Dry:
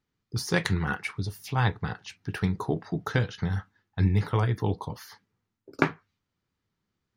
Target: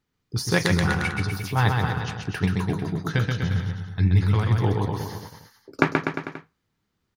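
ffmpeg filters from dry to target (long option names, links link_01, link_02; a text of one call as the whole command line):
ffmpeg -i in.wav -filter_complex "[0:a]asettb=1/sr,asplit=3[link_01][link_02][link_03];[link_01]atrim=end=2.474[link_04];[link_02]atrim=start=2.47:end=4.51,asetpts=PTS-STARTPTS,afade=type=in:duration=0.004:curve=qsin,afade=type=out:start_time=2.036:duration=0.004:curve=qsin,equalizer=frequency=620:width_type=o:width=2.3:gain=-7[link_05];[link_03]atrim=start=4.506[link_06];[link_04][link_05]acrossfade=duration=0.004:curve1=hsin:curve2=qsin[link_07];[link_07][link_06]acrossfade=duration=0.004:curve1=qsin:curve2=hsin,aecho=1:1:130|247|352.3|447.1|532.4:0.631|0.398|0.251|0.158|0.1,volume=3.5dB" out.wav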